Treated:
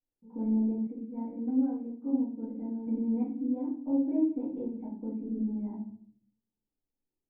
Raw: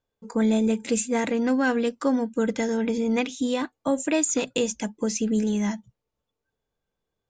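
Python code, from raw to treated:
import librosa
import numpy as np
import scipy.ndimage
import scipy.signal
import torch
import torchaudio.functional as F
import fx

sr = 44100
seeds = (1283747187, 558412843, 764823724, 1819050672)

y = fx.formant_cascade(x, sr, vowel='u')
y = fx.room_shoebox(y, sr, seeds[0], volume_m3=68.0, walls='mixed', distance_m=2.0)
y = fx.upward_expand(y, sr, threshold_db=-29.0, expansion=1.5, at=(0.87, 2.87))
y = y * librosa.db_to_amplitude(-9.0)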